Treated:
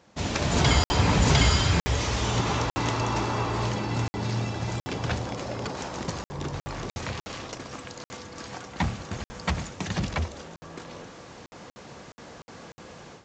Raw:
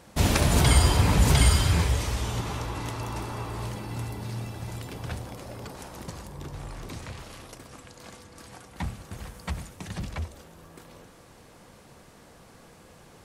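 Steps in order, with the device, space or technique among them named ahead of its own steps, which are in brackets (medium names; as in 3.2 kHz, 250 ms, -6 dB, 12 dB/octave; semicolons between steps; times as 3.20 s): call with lost packets (high-pass 120 Hz 6 dB/octave; resampled via 16 kHz; level rider gain up to 14 dB; lost packets of 60 ms random); trim -5.5 dB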